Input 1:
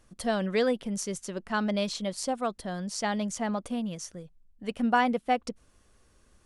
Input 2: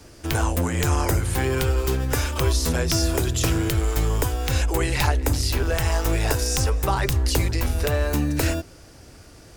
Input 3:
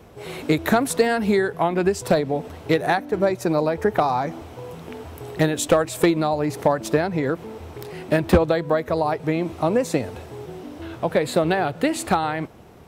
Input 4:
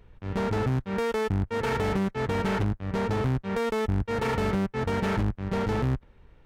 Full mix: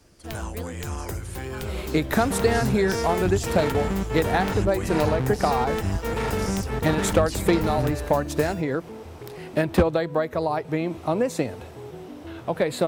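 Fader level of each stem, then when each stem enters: −13.5, −10.5, −3.0, −0.5 decibels; 0.00, 0.00, 1.45, 1.95 seconds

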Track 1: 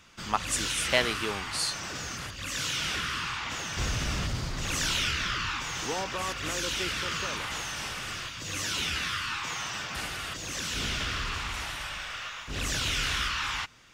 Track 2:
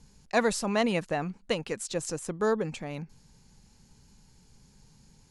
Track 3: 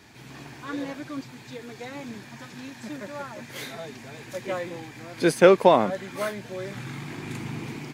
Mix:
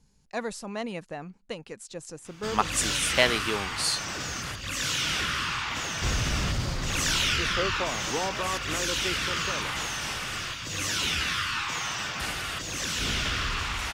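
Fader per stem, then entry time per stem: +3.0, −7.5, −16.5 decibels; 2.25, 0.00, 2.15 seconds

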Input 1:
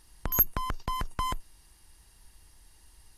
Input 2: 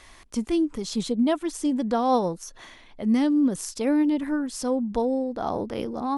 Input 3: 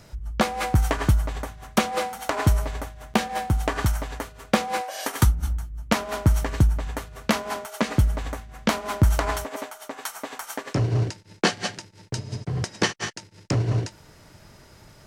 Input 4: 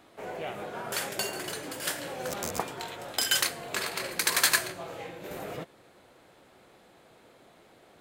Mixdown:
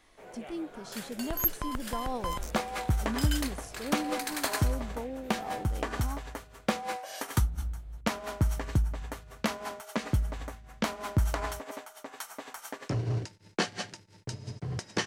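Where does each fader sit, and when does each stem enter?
−4.0, −14.0, −8.0, −10.5 decibels; 1.05, 0.00, 2.15, 0.00 seconds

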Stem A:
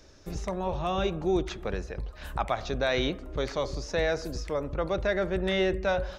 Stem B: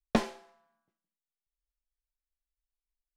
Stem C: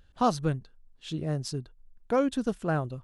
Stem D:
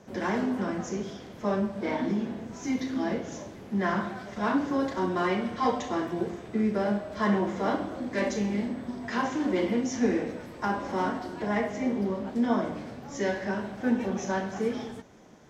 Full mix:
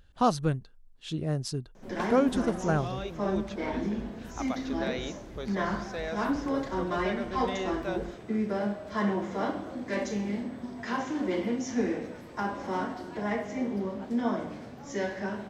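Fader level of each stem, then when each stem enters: −8.5, −10.5, +0.5, −3.0 decibels; 2.00, 1.85, 0.00, 1.75 seconds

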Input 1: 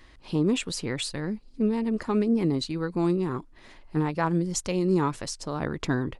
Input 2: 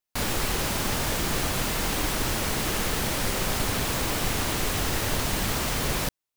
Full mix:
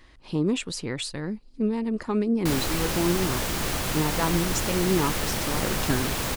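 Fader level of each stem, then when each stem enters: −0.5, −1.0 decibels; 0.00, 2.30 seconds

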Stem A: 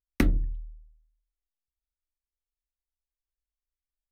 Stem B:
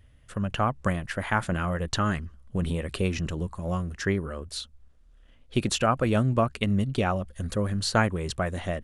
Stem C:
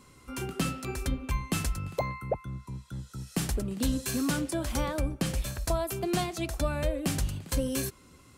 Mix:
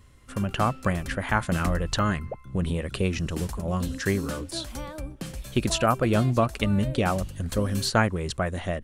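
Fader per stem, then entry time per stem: −8.0, +1.0, −6.0 decibels; 1.45, 0.00, 0.00 seconds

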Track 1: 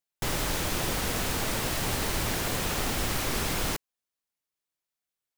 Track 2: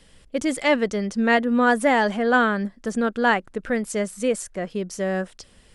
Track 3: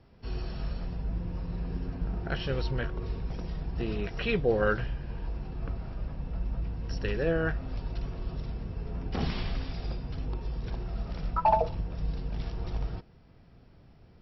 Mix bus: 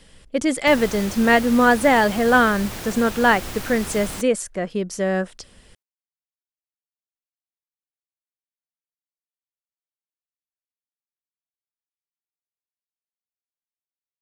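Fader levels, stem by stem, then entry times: −3.5 dB, +3.0 dB, muted; 0.45 s, 0.00 s, muted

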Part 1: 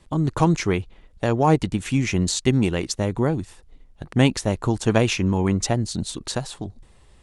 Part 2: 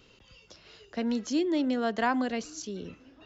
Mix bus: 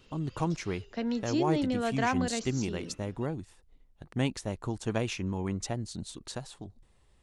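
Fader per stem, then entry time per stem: −12.0, −2.0 decibels; 0.00, 0.00 seconds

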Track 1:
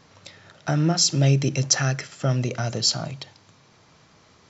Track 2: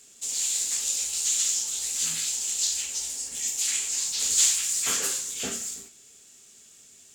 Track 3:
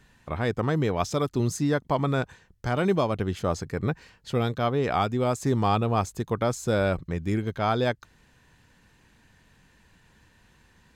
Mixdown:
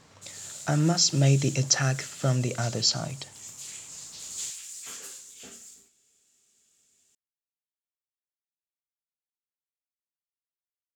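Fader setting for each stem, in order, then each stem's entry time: −2.5 dB, −14.5 dB, muted; 0.00 s, 0.00 s, muted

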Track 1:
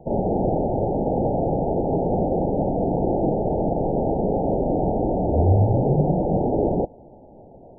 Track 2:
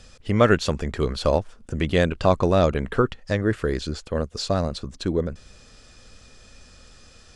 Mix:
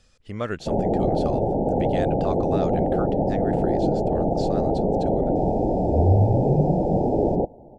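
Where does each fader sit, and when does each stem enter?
0.0, −11.5 decibels; 0.60, 0.00 seconds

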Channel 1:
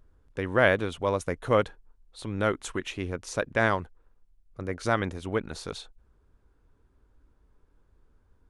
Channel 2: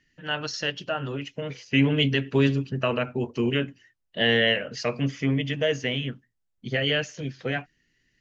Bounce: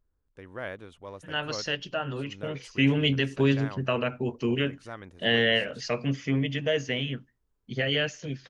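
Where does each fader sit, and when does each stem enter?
−15.5, −2.0 decibels; 0.00, 1.05 seconds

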